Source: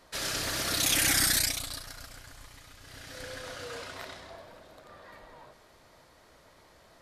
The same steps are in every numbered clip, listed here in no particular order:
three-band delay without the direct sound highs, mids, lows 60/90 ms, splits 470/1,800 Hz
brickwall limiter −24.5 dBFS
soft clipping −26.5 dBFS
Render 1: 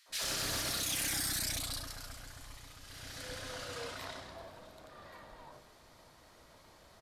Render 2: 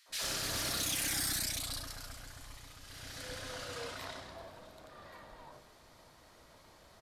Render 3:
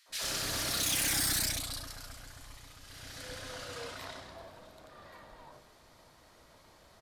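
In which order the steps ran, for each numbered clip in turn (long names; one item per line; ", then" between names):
three-band delay without the direct sound, then brickwall limiter, then soft clipping
brickwall limiter, then three-band delay without the direct sound, then soft clipping
three-band delay without the direct sound, then soft clipping, then brickwall limiter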